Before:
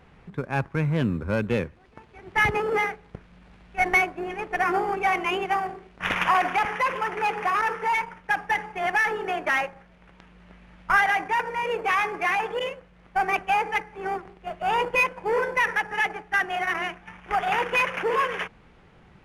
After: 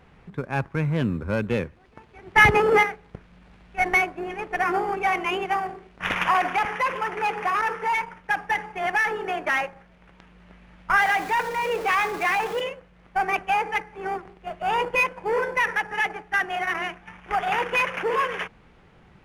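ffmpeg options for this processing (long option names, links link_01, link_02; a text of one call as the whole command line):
ffmpeg -i in.wav -filter_complex "[0:a]asettb=1/sr,asplit=3[link_01][link_02][link_03];[link_01]atrim=end=11.004[link_04];[link_02]atrim=start=11:end=12.61,asetpts=PTS-STARTPTS,afade=type=in:duration=0.004:curve=qsin,afade=type=out:start_time=1.606:duration=0.004:curve=qsin,aeval=exprs='val(0)+0.5*0.0224*sgn(val(0))':channel_layout=same[link_05];[link_03]atrim=start=12.606[link_06];[link_04][link_05]acrossfade=duration=0.004:curve1=hsin:curve2=qsin[link_07];[link_07][link_06]acrossfade=duration=0.004:curve1=qsin:curve2=hsin,asplit=3[link_08][link_09][link_10];[link_08]atrim=end=2.362[link_11];[link_09]atrim=start=2.358:end=2.832,asetpts=PTS-STARTPTS,volume=6.5dB[link_12];[link_10]atrim=start=2.828[link_13];[link_11][link_12]acrossfade=duration=0.004:curve1=hsin:curve2=hsin[link_14];[link_14][link_13]acrossfade=duration=0.004:curve1=hsin:curve2=hsin" out.wav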